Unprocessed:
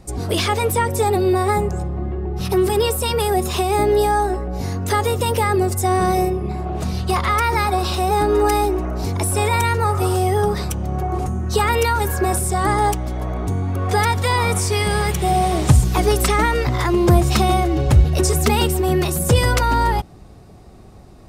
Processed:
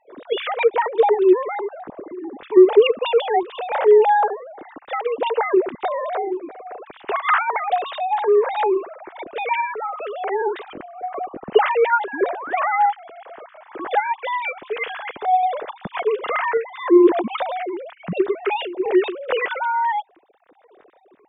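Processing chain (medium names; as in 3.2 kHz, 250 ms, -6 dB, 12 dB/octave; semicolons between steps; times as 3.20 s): formants replaced by sine waves; painted sound rise, 12.13–12.60 s, 250–2600 Hz -28 dBFS; random-step tremolo, depth 55%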